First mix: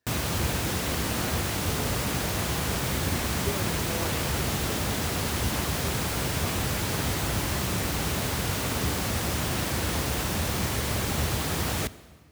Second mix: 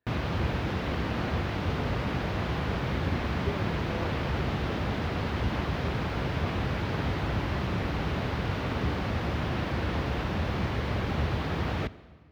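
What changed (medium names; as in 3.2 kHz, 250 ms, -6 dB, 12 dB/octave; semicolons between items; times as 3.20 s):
speech: send -10.5 dB; master: add distance through air 310 m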